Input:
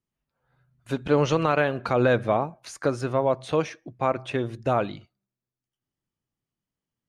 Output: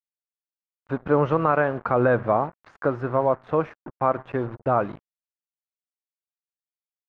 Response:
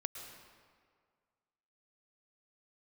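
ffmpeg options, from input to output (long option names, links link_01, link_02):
-af "acrusher=bits=5:mix=0:aa=0.5,lowpass=frequency=1300:width_type=q:width=1.5"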